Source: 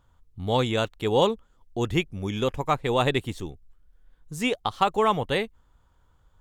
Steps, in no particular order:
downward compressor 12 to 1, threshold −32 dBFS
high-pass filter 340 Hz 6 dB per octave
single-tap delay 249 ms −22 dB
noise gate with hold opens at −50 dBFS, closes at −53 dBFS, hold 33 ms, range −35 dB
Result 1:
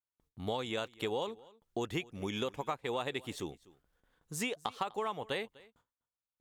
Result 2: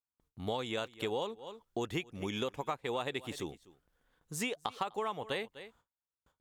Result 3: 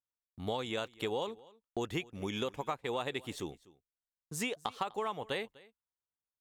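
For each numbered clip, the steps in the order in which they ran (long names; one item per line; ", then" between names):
noise gate with hold, then high-pass filter, then downward compressor, then single-tap delay
single-tap delay, then noise gate with hold, then high-pass filter, then downward compressor
high-pass filter, then downward compressor, then noise gate with hold, then single-tap delay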